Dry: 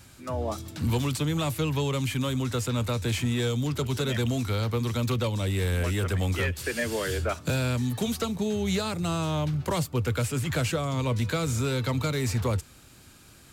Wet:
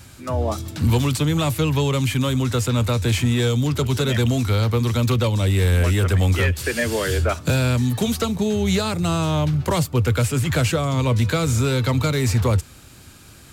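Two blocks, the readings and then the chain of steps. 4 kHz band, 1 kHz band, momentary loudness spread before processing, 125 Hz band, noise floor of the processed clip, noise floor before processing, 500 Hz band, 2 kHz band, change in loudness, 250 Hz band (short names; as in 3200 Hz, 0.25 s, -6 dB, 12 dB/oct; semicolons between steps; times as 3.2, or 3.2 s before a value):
+6.5 dB, +6.5 dB, 2 LU, +8.5 dB, -45 dBFS, -52 dBFS, +6.5 dB, +6.5 dB, +7.5 dB, +7.0 dB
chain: bell 83 Hz +3.5 dB 1.1 oct; gain +6.5 dB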